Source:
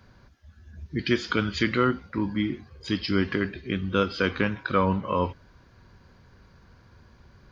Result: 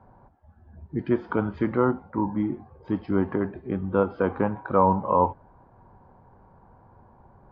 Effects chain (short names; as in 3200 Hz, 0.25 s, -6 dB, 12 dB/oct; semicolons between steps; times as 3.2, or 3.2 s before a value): synth low-pass 840 Hz, resonance Q 4.9; bell 62 Hz -9 dB 0.51 oct